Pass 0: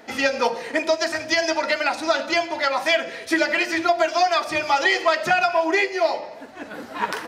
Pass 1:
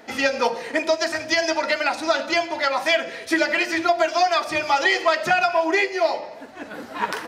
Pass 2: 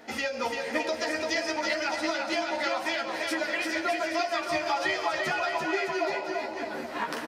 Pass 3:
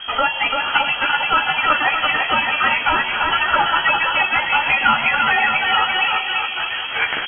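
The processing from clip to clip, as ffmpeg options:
-af anull
-filter_complex "[0:a]acompressor=threshold=-24dB:ratio=6,asplit=2[a][b];[b]adelay=13,volume=-4.5dB[c];[a][c]amix=inputs=2:normalize=0,asplit=2[d][e];[e]aecho=0:1:340|612|829.6|1004|1143:0.631|0.398|0.251|0.158|0.1[f];[d][f]amix=inputs=2:normalize=0,volume=-4.5dB"
-af "crystalizer=i=9:c=0,aeval=exprs='val(0)+0.0141*(sin(2*PI*50*n/s)+sin(2*PI*2*50*n/s)/2+sin(2*PI*3*50*n/s)/3+sin(2*PI*4*50*n/s)/4+sin(2*PI*5*50*n/s)/5)':c=same,lowpass=f=2.8k:t=q:w=0.5098,lowpass=f=2.8k:t=q:w=0.6013,lowpass=f=2.8k:t=q:w=0.9,lowpass=f=2.8k:t=q:w=2.563,afreqshift=-3300,volume=6dB"

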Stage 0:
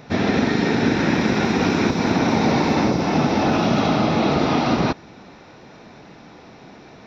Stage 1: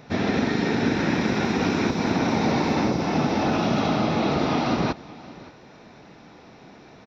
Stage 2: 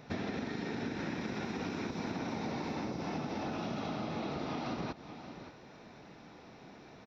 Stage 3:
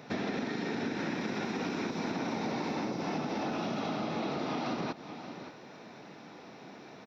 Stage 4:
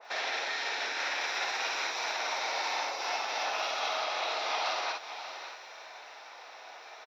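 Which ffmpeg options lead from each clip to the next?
-af "aecho=1:1:572:0.0944,volume=-4dB"
-af "acompressor=threshold=-28dB:ratio=10,volume=-6dB"
-filter_complex "[0:a]highpass=160,asplit=2[a][b];[b]asoftclip=type=tanh:threshold=-33dB,volume=-9dB[c];[a][c]amix=inputs=2:normalize=0,volume=2dB"
-filter_complex "[0:a]highpass=f=640:w=0.5412,highpass=f=640:w=1.3066,asplit=2[a][b];[b]aecho=0:1:50|61:0.562|0.422[c];[a][c]amix=inputs=2:normalize=0,adynamicequalizer=threshold=0.00251:dfrequency=1800:dqfactor=0.7:tfrequency=1800:tqfactor=0.7:attack=5:release=100:ratio=0.375:range=3:mode=boostabove:tftype=highshelf,volume=3dB"

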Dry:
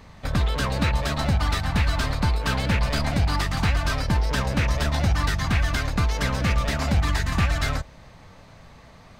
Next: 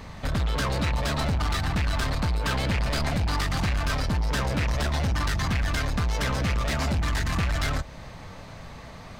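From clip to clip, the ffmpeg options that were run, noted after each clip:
-filter_complex "[0:a]asplit=2[a][b];[b]acompressor=threshold=-30dB:ratio=6,volume=0dB[c];[a][c]amix=inputs=2:normalize=0,asoftclip=type=tanh:threshold=-21.5dB"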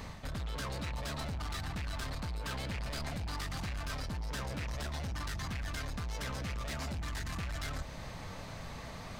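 -af "highshelf=f=5k:g=5,areverse,acompressor=threshold=-34dB:ratio=10,areverse,volume=-2.5dB"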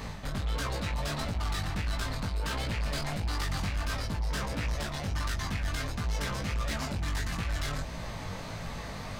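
-af "flanger=delay=17.5:depth=3.7:speed=1.5,volume=8.5dB"

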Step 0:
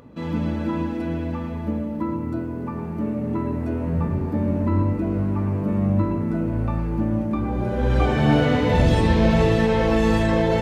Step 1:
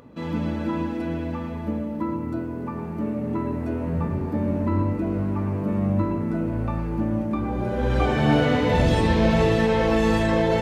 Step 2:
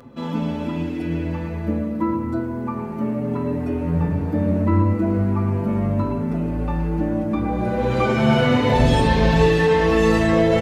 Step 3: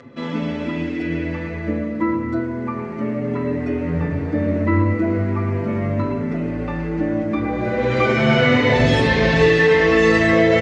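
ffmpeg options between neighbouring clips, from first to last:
-af "lowshelf=f=190:g=-4"
-filter_complex "[0:a]asplit=2[a][b];[b]adelay=5.4,afreqshift=0.35[c];[a][c]amix=inputs=2:normalize=1,volume=6.5dB"
-af "highpass=100,equalizer=f=190:t=q:w=4:g=-9,equalizer=f=870:t=q:w=4:g=-7,equalizer=f=2k:t=q:w=4:g=9,lowpass=f=6.8k:w=0.5412,lowpass=f=6.8k:w=1.3066,volume=3dB"

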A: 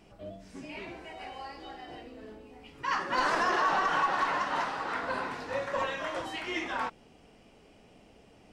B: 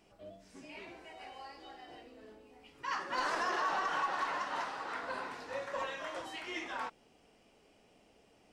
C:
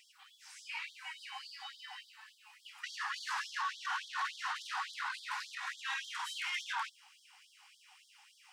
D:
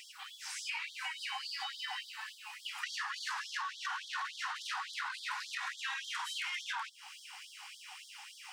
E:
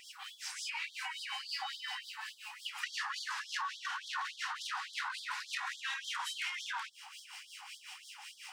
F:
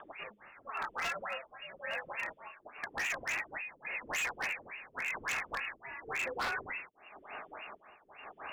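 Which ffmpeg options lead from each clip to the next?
-af "bass=f=250:g=-6,treble=f=4k:g=3,volume=-6.5dB"
-af "alimiter=level_in=10.5dB:limit=-24dB:level=0:latency=1:release=12,volume=-10.5dB,asoftclip=type=tanh:threshold=-40dB,afftfilt=real='re*gte(b*sr/1024,730*pow(3200/730,0.5+0.5*sin(2*PI*3.5*pts/sr)))':imag='im*gte(b*sr/1024,730*pow(3200/730,0.5+0.5*sin(2*PI*3.5*pts/sr)))':win_size=1024:overlap=0.75,volume=10.5dB"
-af "acompressor=threshold=-48dB:ratio=10,volume=11.5dB"
-filter_complex "[0:a]acrossover=split=1600[a][b];[a]aeval=exprs='val(0)*(1-0.7/2+0.7/2*cos(2*PI*5.5*n/s))':c=same[c];[b]aeval=exprs='val(0)*(1-0.7/2-0.7/2*cos(2*PI*5.5*n/s))':c=same[d];[c][d]amix=inputs=2:normalize=0,volume=3.5dB"
-af "tremolo=f=0.94:d=0.82,lowpass=f=3.1k:t=q:w=0.5098,lowpass=f=3.1k:t=q:w=0.6013,lowpass=f=3.1k:t=q:w=0.9,lowpass=f=3.1k:t=q:w=2.563,afreqshift=-3600,aeval=exprs='0.015*(abs(mod(val(0)/0.015+3,4)-2)-1)':c=same,volume=7.5dB"

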